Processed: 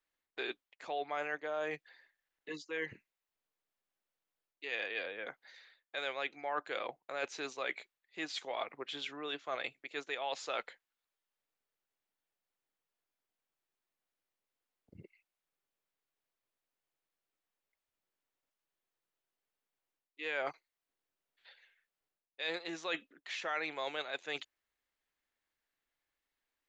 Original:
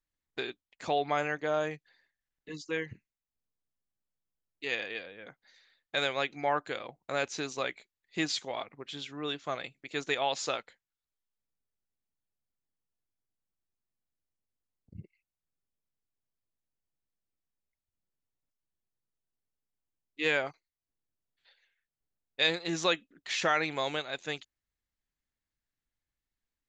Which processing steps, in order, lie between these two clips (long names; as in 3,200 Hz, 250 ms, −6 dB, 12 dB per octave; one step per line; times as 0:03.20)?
high-shelf EQ 5,000 Hz +7.5 dB
reversed playback
downward compressor 6 to 1, threshold −40 dBFS, peak gain reduction 18.5 dB
reversed playback
three-way crossover with the lows and the highs turned down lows −16 dB, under 320 Hz, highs −13 dB, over 3,500 Hz
level +6 dB